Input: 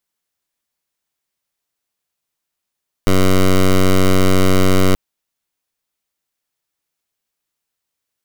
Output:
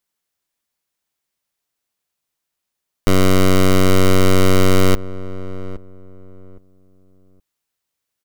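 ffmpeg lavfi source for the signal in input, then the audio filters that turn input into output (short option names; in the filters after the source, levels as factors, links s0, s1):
-f lavfi -i "aevalsrc='0.299*(2*lt(mod(94.1*t,1),0.11)-1)':d=1.88:s=44100"
-filter_complex "[0:a]asplit=2[s0][s1];[s1]adelay=816,lowpass=f=910:p=1,volume=0.178,asplit=2[s2][s3];[s3]adelay=816,lowpass=f=910:p=1,volume=0.25,asplit=2[s4][s5];[s5]adelay=816,lowpass=f=910:p=1,volume=0.25[s6];[s0][s2][s4][s6]amix=inputs=4:normalize=0"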